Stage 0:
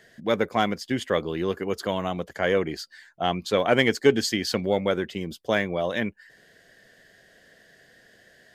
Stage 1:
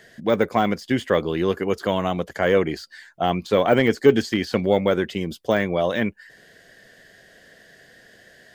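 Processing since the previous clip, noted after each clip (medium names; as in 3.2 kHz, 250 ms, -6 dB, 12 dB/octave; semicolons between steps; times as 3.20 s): de-esser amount 100%; trim +5 dB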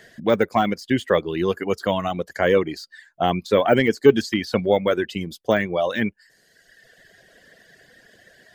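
reverb removal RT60 1.4 s; trim +1.5 dB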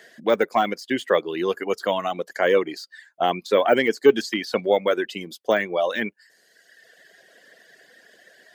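high-pass 310 Hz 12 dB/octave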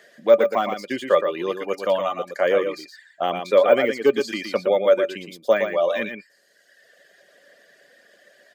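small resonant body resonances 570/1200/2400 Hz, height 14 dB, ringing for 100 ms; on a send: delay 117 ms -7 dB; on the sum: trim -3.5 dB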